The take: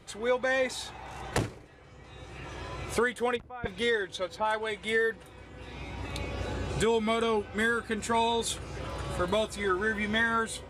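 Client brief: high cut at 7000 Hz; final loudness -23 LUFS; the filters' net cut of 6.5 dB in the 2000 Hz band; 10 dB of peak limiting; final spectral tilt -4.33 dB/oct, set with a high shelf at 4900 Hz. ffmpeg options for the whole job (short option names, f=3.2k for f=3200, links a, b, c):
-af "lowpass=7k,equalizer=f=2k:t=o:g=-9,highshelf=f=4.9k:g=5.5,volume=12.5dB,alimiter=limit=-13dB:level=0:latency=1"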